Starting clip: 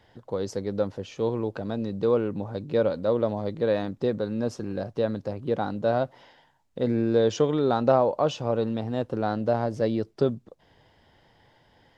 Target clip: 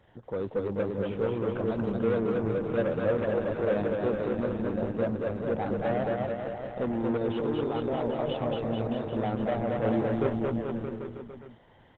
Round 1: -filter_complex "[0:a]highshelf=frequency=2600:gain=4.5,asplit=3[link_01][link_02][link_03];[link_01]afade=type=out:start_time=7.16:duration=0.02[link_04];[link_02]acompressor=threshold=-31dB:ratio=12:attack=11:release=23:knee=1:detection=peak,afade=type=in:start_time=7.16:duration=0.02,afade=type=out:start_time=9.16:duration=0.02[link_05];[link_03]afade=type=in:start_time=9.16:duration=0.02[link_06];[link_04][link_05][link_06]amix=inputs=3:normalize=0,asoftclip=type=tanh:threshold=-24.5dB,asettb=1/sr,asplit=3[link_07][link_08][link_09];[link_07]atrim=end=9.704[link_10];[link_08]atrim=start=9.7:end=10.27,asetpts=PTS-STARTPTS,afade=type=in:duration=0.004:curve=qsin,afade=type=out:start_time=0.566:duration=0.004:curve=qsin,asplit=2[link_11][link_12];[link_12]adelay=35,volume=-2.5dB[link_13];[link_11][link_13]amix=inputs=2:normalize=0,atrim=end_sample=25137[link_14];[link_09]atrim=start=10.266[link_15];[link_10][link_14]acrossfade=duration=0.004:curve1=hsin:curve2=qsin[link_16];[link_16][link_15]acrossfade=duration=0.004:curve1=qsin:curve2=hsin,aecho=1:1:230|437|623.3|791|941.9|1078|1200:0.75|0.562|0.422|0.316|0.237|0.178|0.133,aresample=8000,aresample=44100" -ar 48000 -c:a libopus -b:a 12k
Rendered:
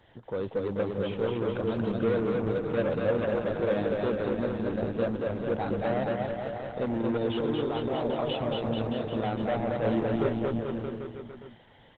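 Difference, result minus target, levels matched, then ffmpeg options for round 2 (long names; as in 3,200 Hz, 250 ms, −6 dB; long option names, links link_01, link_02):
4,000 Hz band +5.5 dB
-filter_complex "[0:a]highshelf=frequency=2600:gain=-6.5,asplit=3[link_01][link_02][link_03];[link_01]afade=type=out:start_time=7.16:duration=0.02[link_04];[link_02]acompressor=threshold=-31dB:ratio=12:attack=11:release=23:knee=1:detection=peak,afade=type=in:start_time=7.16:duration=0.02,afade=type=out:start_time=9.16:duration=0.02[link_05];[link_03]afade=type=in:start_time=9.16:duration=0.02[link_06];[link_04][link_05][link_06]amix=inputs=3:normalize=0,asoftclip=type=tanh:threshold=-24.5dB,asettb=1/sr,asplit=3[link_07][link_08][link_09];[link_07]atrim=end=9.704[link_10];[link_08]atrim=start=9.7:end=10.27,asetpts=PTS-STARTPTS,afade=type=in:duration=0.004:curve=qsin,afade=type=out:start_time=0.566:duration=0.004:curve=qsin,asplit=2[link_11][link_12];[link_12]adelay=35,volume=-2.5dB[link_13];[link_11][link_13]amix=inputs=2:normalize=0,atrim=end_sample=25137[link_14];[link_09]atrim=start=10.266[link_15];[link_10][link_14]acrossfade=duration=0.004:curve1=hsin:curve2=qsin[link_16];[link_16][link_15]acrossfade=duration=0.004:curve1=qsin:curve2=hsin,aecho=1:1:230|437|623.3|791|941.9|1078|1200:0.75|0.562|0.422|0.316|0.237|0.178|0.133,aresample=8000,aresample=44100" -ar 48000 -c:a libopus -b:a 12k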